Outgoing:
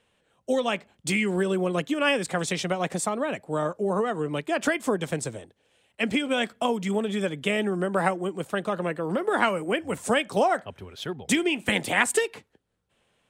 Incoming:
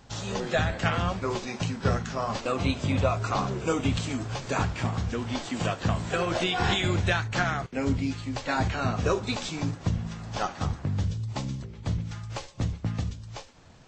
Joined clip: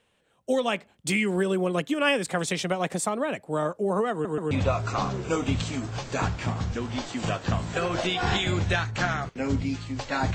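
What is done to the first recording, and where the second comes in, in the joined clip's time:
outgoing
4.12 s: stutter in place 0.13 s, 3 plays
4.51 s: go over to incoming from 2.88 s

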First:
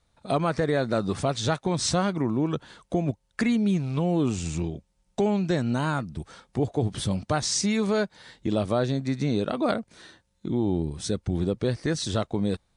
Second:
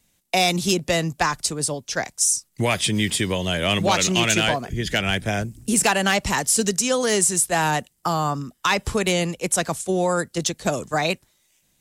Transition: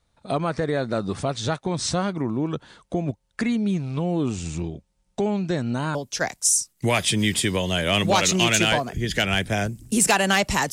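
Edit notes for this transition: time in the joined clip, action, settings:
first
5.95 s: go over to second from 1.71 s

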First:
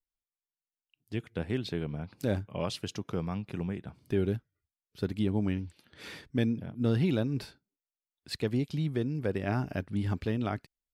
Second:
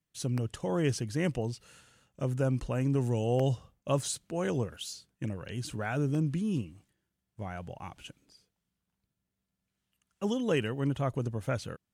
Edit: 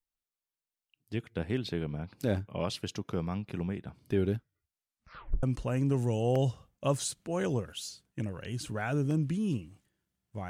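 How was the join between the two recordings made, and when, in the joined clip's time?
first
4.64 s: tape stop 0.79 s
5.43 s: go over to second from 2.47 s

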